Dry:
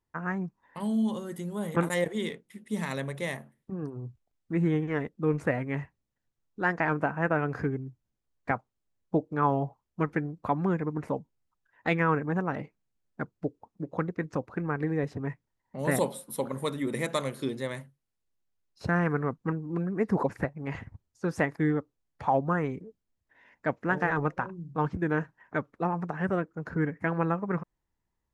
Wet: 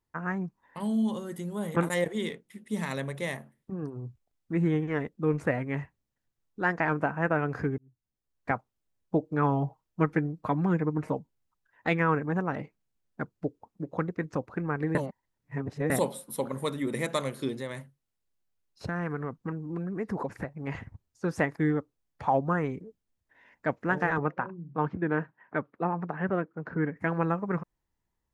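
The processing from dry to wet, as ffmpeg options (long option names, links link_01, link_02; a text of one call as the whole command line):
ffmpeg -i in.wav -filter_complex "[0:a]asettb=1/sr,asplit=3[link_01][link_02][link_03];[link_01]atrim=end=9.224[link_04];[link_02]atrim=start=9.22:end=11.14,asetpts=PTS-STARTPTS,afade=type=in:duration=0.004:curve=qsin,afade=type=out:start_time=1.916:duration=0.004:curve=qsin,aecho=1:1:6.4:0.48,atrim=end_sample=84672[link_05];[link_03]atrim=start=11.136[link_06];[link_04][link_05]acrossfade=duration=0.004:curve1=hsin:curve2=qsin[link_07];[link_07][link_06]acrossfade=duration=0.004:curve1=qsin:curve2=hsin,asettb=1/sr,asplit=3[link_08][link_09][link_10];[link_08]atrim=end=17.554[link_11];[link_09]atrim=start=17.55:end=20.65,asetpts=PTS-STARTPTS,afade=type=in:duration=0.004:curve=qsin,afade=type=out:start_time=3.096:duration=0.004:curve=qsin,acompressor=threshold=-32dB:ratio=2:attack=3.2:release=140:knee=1:detection=peak[link_12];[link_10]atrim=start=20.646[link_13];[link_11][link_12]acrossfade=duration=0.004:curve1=hsin:curve2=qsin[link_14];[link_14][link_13]acrossfade=duration=0.004:curve1=qsin:curve2=hsin,asettb=1/sr,asplit=3[link_15][link_16][link_17];[link_15]atrim=end=24.184[link_18];[link_16]atrim=start=24.18:end=26.96,asetpts=PTS-STARTPTS,afade=type=in:duration=0.004:curve=qsin,afade=type=out:start_time=2.776:duration=0.004:curve=qsin,highpass=130,lowpass=2800[link_19];[link_17]atrim=start=26.956[link_20];[link_18][link_19]acrossfade=duration=0.004:curve1=hsin:curve2=qsin[link_21];[link_21][link_20]acrossfade=duration=0.004:curve1=qsin:curve2=hsin,asplit=4[link_22][link_23][link_24][link_25];[link_22]atrim=end=7.78,asetpts=PTS-STARTPTS,afade=type=out:start_time=7.776:duration=0.004:curve=hsin[link_26];[link_23]atrim=start=7.78:end=14.952,asetpts=PTS-STARTPTS,afade=type=in:duration=0.74[link_27];[link_24]atrim=start=14.948:end=15.902,asetpts=PTS-STARTPTS,areverse[link_28];[link_25]atrim=start=15.898[link_29];[link_26][link_27]concat=n=2:v=0:a=1[link_30];[link_30][link_28]acrossfade=duration=0.004:curve1=hsin:curve2=hsin[link_31];[link_31][link_29]acrossfade=duration=0.004:curve1=hsin:curve2=hsin" out.wav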